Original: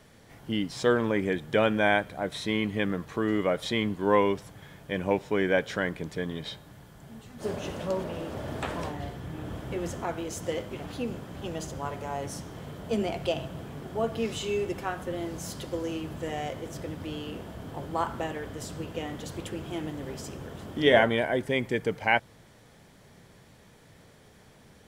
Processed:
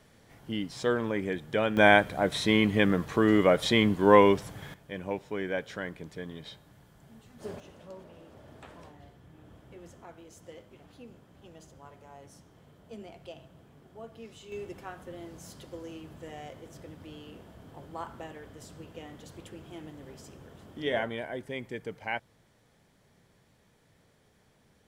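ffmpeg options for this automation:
-af "asetnsamples=n=441:p=0,asendcmd='1.77 volume volume 4.5dB;4.74 volume volume -7.5dB;7.6 volume volume -16.5dB;14.52 volume volume -10dB',volume=-4dB"

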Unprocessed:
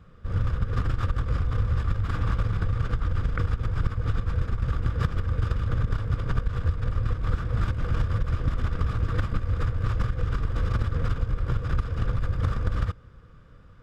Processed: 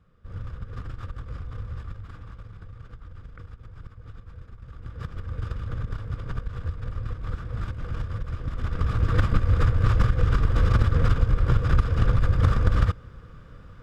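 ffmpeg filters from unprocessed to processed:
-af "volume=12.5dB,afade=t=out:st=1.78:d=0.48:silence=0.446684,afade=t=in:st=4.7:d=0.72:silence=0.266073,afade=t=in:st=8.49:d=0.79:silence=0.281838"

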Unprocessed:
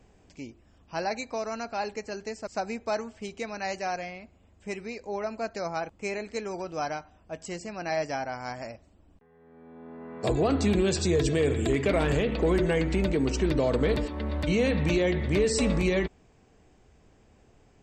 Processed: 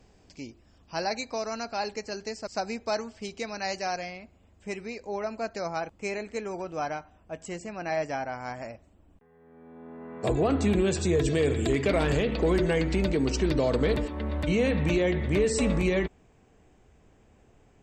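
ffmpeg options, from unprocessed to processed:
-af "asetnsamples=n=441:p=0,asendcmd='4.17 equalizer g 0.5;6.23 equalizer g -7;11.28 equalizer g 4;13.93 equalizer g -5.5',equalizer=f=4.8k:t=o:w=0.64:g=7"

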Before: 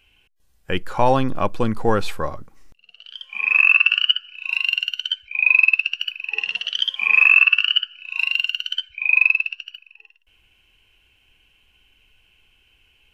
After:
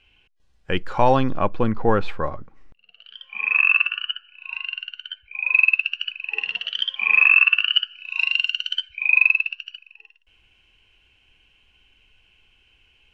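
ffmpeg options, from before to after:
-af "asetnsamples=n=441:p=0,asendcmd='1.38 lowpass f 2600;3.86 lowpass f 1700;5.54 lowpass f 3200;7.74 lowpass f 6600;9 lowpass f 4300;9.67 lowpass f 6700',lowpass=5k"

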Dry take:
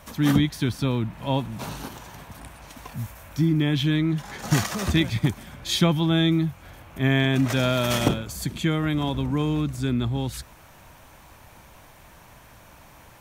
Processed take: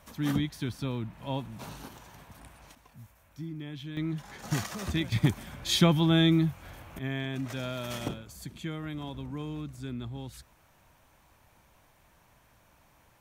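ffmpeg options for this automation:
-af "asetnsamples=n=441:p=0,asendcmd='2.75 volume volume -18dB;3.97 volume volume -9dB;5.12 volume volume -2dB;6.99 volume volume -13dB',volume=-9dB"

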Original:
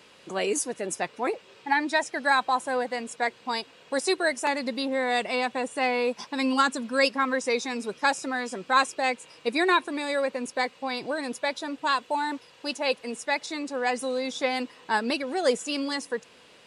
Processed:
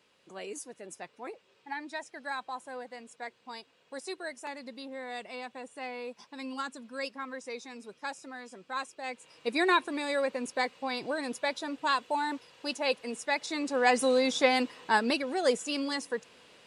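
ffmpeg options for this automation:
-af "volume=4dB,afade=t=in:st=9.01:d=0.61:silence=0.281838,afade=t=in:st=13.37:d=0.72:silence=0.446684,afade=t=out:st=14.09:d=1.28:silence=0.446684"

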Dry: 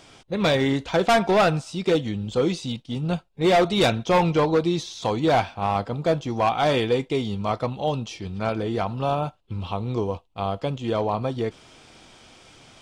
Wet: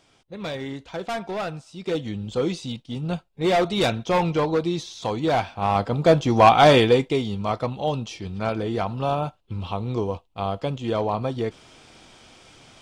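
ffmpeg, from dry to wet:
-af "volume=8.5dB,afade=t=in:st=1.72:d=0.41:silence=0.375837,afade=t=in:st=5.43:d=1.1:silence=0.298538,afade=t=out:st=6.53:d=0.71:silence=0.375837"

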